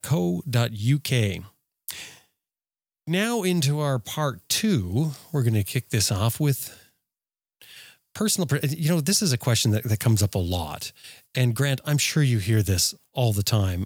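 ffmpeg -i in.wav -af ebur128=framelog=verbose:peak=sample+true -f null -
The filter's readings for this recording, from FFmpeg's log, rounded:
Integrated loudness:
  I:         -23.7 LUFS
  Threshold: -34.6 LUFS
Loudness range:
  LRA:         3.6 LU
  Threshold: -45.0 LUFS
  LRA low:   -27.2 LUFS
  LRA high:  -23.6 LUFS
Sample peak:
  Peak:      -10.1 dBFS
True peak:
  Peak:       -9.4 dBFS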